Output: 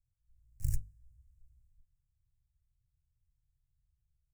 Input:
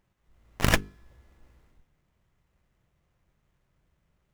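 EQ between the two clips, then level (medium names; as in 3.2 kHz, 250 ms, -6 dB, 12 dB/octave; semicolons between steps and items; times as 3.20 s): elliptic band-stop 120–7700 Hz, stop band 40 dB; three-band isolator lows -13 dB, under 460 Hz, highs -14 dB, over 3.7 kHz; bass shelf 120 Hz +8.5 dB; +2.0 dB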